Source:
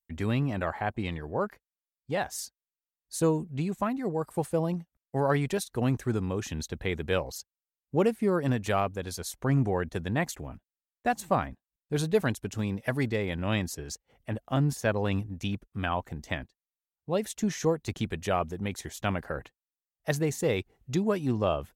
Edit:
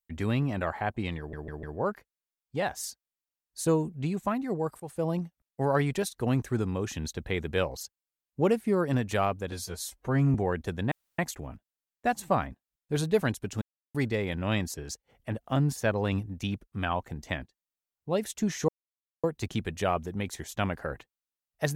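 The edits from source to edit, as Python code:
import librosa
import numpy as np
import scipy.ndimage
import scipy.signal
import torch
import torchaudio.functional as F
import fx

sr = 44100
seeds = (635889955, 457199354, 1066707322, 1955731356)

y = fx.edit(x, sr, fx.stutter(start_s=1.18, slice_s=0.15, count=4),
    fx.fade_in_from(start_s=4.35, length_s=0.31, floor_db=-17.5),
    fx.stretch_span(start_s=9.07, length_s=0.55, factor=1.5),
    fx.insert_room_tone(at_s=10.19, length_s=0.27),
    fx.silence(start_s=12.62, length_s=0.33),
    fx.insert_silence(at_s=17.69, length_s=0.55), tone=tone)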